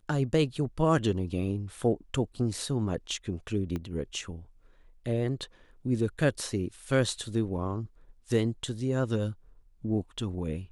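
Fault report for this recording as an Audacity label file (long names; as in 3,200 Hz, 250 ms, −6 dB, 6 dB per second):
3.760000	3.760000	click −22 dBFS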